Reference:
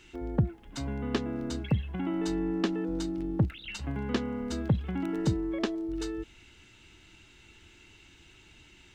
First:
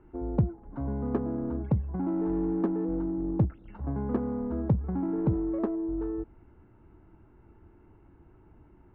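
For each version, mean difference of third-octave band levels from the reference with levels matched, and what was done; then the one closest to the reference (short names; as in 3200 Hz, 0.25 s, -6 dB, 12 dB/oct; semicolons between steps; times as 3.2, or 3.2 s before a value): 6.5 dB: LPF 1100 Hz 24 dB/oct; in parallel at -6 dB: soft clip -33.5 dBFS, distortion -6 dB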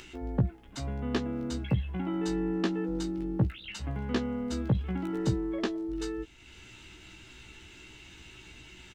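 2.5 dB: upward compressor, threshold -41 dBFS; doubler 16 ms -4.5 dB; gain -2 dB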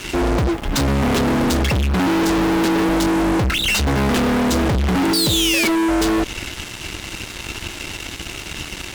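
12.5 dB: painted sound fall, 5.13–5.68, 2200–4800 Hz -32 dBFS; fuzz box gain 49 dB, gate -56 dBFS; gain -3 dB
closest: second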